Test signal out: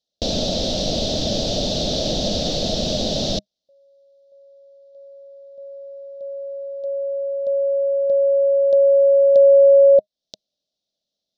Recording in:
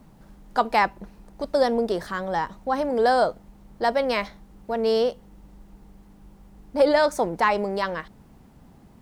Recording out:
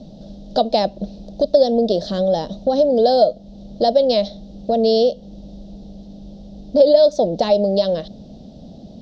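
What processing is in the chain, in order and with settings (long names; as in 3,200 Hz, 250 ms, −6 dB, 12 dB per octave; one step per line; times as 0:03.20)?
drawn EQ curve 130 Hz 0 dB, 200 Hz +8 dB, 400 Hz +1 dB, 620 Hz +13 dB, 1,000 Hz −17 dB, 2,200 Hz −16 dB, 3,700 Hz +11 dB, 5,800 Hz +5 dB, 9,900 Hz −29 dB
downward compressor 2 to 1, threshold −26 dBFS
level +8 dB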